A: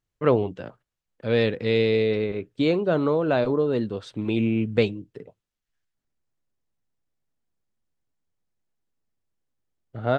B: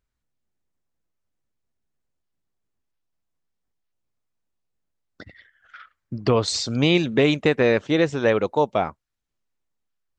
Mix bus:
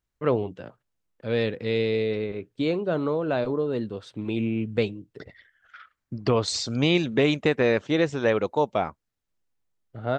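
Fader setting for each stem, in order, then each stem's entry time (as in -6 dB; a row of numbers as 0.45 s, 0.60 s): -3.5 dB, -3.0 dB; 0.00 s, 0.00 s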